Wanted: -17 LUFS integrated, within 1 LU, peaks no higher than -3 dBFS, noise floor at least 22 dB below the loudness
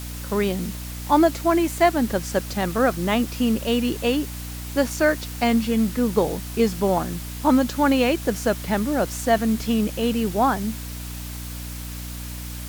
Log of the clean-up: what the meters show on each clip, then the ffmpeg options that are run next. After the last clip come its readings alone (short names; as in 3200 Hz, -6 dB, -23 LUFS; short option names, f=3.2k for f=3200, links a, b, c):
hum 60 Hz; harmonics up to 300 Hz; hum level -32 dBFS; noise floor -33 dBFS; noise floor target -45 dBFS; loudness -22.5 LUFS; peak -5.5 dBFS; loudness target -17.0 LUFS
-> -af "bandreject=f=60:t=h:w=6,bandreject=f=120:t=h:w=6,bandreject=f=180:t=h:w=6,bandreject=f=240:t=h:w=6,bandreject=f=300:t=h:w=6"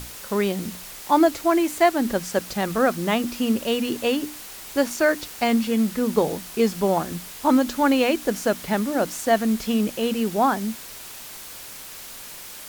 hum none; noise floor -39 dBFS; noise floor target -45 dBFS
-> -af "afftdn=nr=6:nf=-39"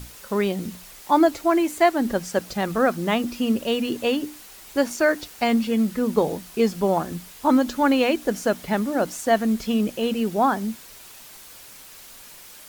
noise floor -45 dBFS; loudness -23.0 LUFS; peak -6.0 dBFS; loudness target -17.0 LUFS
-> -af "volume=6dB,alimiter=limit=-3dB:level=0:latency=1"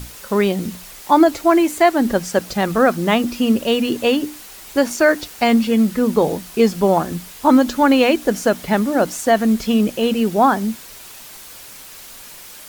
loudness -17.0 LUFS; peak -3.0 dBFS; noise floor -39 dBFS